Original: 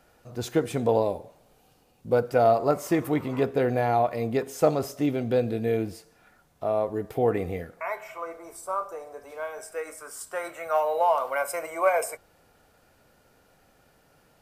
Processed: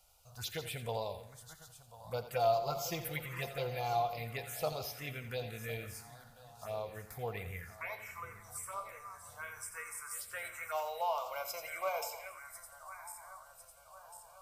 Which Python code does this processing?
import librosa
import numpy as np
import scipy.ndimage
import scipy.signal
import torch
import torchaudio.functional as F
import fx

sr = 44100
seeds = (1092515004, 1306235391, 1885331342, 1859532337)

y = fx.reverse_delay_fb(x, sr, ms=525, feedback_pct=70, wet_db=-13.5)
y = fx.tone_stack(y, sr, knobs='10-0-10')
y = 10.0 ** (-18.5 / 20.0) * np.tanh(y / 10.0 ** (-18.5 / 20.0))
y = fx.env_phaser(y, sr, low_hz=280.0, high_hz=1800.0, full_db=-35.0)
y = fx.comb(y, sr, ms=5.8, depth=0.65, at=(2.28, 4.13))
y = fx.echo_feedback(y, sr, ms=86, feedback_pct=44, wet_db=-12.5)
y = y * librosa.db_to_amplitude(2.5)